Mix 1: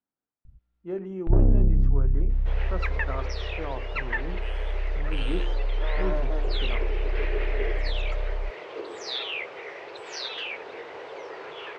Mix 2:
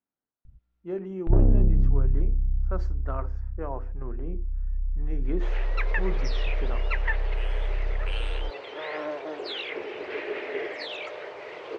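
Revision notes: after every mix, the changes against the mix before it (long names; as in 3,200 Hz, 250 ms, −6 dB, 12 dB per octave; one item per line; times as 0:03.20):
second sound: entry +2.95 s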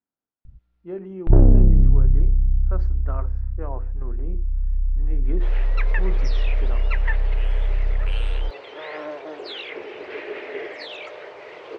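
speech: add high-frequency loss of the air 120 metres
first sound +6.5 dB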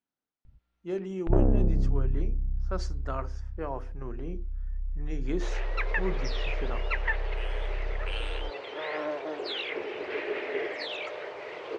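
speech: remove low-pass filter 1,600 Hz 12 dB per octave
first sound: add low-shelf EQ 300 Hz −11.5 dB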